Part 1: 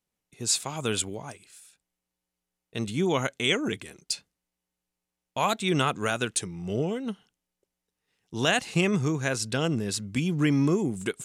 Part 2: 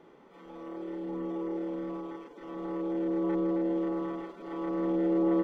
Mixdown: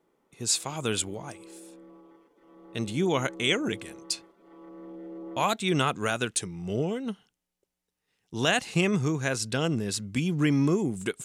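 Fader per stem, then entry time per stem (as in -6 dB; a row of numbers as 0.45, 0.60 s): -0.5, -14.5 dB; 0.00, 0.00 s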